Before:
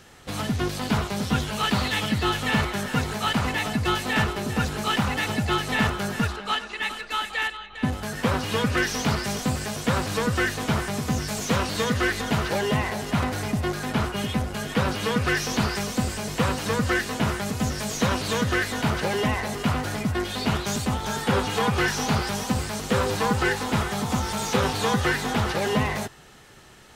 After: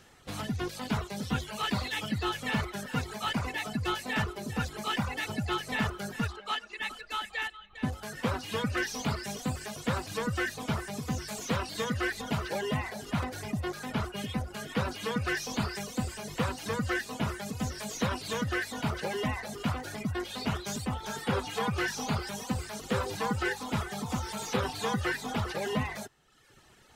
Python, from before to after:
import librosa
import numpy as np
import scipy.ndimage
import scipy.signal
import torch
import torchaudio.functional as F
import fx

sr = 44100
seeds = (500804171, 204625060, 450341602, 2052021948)

y = fx.dereverb_blind(x, sr, rt60_s=0.94)
y = y * librosa.db_to_amplitude(-6.5)